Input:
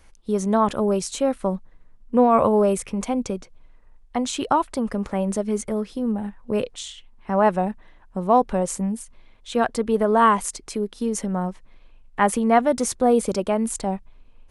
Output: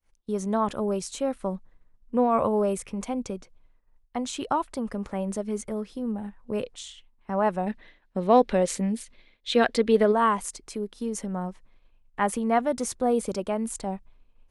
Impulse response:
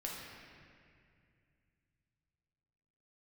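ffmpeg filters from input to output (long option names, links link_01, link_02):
-filter_complex "[0:a]agate=range=-33dB:threshold=-42dB:ratio=3:detection=peak,asplit=3[link_01][link_02][link_03];[link_01]afade=type=out:start_time=7.66:duration=0.02[link_04];[link_02]equalizer=frequency=250:width_type=o:width=1:gain=5,equalizer=frequency=500:width_type=o:width=1:gain=7,equalizer=frequency=1000:width_type=o:width=1:gain=-3,equalizer=frequency=2000:width_type=o:width=1:gain=10,equalizer=frequency=4000:width_type=o:width=1:gain=12,afade=type=in:start_time=7.66:duration=0.02,afade=type=out:start_time=10.11:duration=0.02[link_05];[link_03]afade=type=in:start_time=10.11:duration=0.02[link_06];[link_04][link_05][link_06]amix=inputs=3:normalize=0,volume=-6dB"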